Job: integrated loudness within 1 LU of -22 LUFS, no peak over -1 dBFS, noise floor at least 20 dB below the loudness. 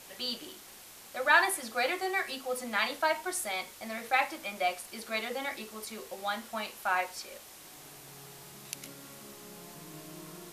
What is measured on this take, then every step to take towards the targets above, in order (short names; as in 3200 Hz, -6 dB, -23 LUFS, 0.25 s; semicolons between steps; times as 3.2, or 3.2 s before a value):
noise floor -51 dBFS; noise floor target -52 dBFS; loudness -32.0 LUFS; peak -9.5 dBFS; loudness target -22.0 LUFS
-> denoiser 6 dB, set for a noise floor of -51 dBFS; gain +10 dB; limiter -1 dBFS